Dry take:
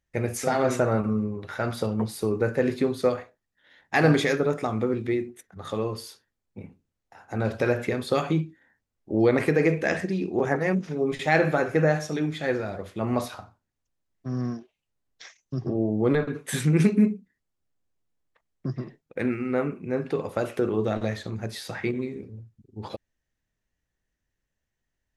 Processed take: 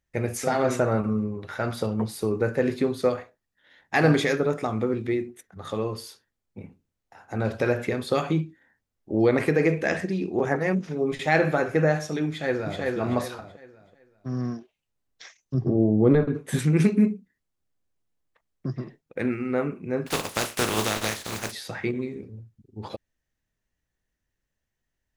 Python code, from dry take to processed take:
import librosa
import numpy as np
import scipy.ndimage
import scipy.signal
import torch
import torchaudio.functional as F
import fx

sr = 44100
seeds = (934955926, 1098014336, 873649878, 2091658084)

y = fx.echo_throw(x, sr, start_s=12.28, length_s=0.52, ms=380, feedback_pct=30, wet_db=-2.0)
y = fx.tilt_shelf(y, sr, db=6.0, hz=830.0, at=(15.54, 16.59))
y = fx.spec_flatten(y, sr, power=0.33, at=(20.06, 21.51), fade=0.02)